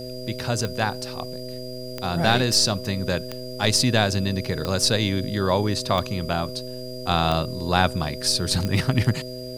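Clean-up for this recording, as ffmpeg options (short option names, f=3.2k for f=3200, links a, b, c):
-af "adeclick=t=4,bandreject=f=126:t=h:w=4,bandreject=f=252:t=h:w=4,bandreject=f=378:t=h:w=4,bandreject=f=504:t=h:w=4,bandreject=f=630:t=h:w=4,bandreject=f=4.8k:w=30,agate=range=-21dB:threshold=-26dB"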